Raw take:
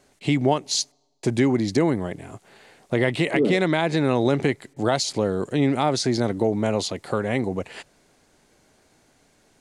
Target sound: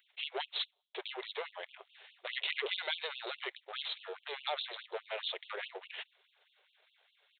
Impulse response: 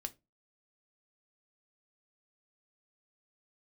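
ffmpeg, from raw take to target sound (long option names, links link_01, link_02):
-af "aeval=exprs='if(lt(val(0),0),0.447*val(0),val(0))':channel_layout=same,aemphasis=mode=production:type=75fm,atempo=1.3,aresample=8000,asoftclip=type=tanh:threshold=-20dB,aresample=44100,crystalizer=i=4:c=0,afftfilt=real='re*gte(b*sr/1024,350*pow(2700/350,0.5+0.5*sin(2*PI*4.8*pts/sr)))':imag='im*gte(b*sr/1024,350*pow(2700/350,0.5+0.5*sin(2*PI*4.8*pts/sr)))':win_size=1024:overlap=0.75,volume=-7.5dB"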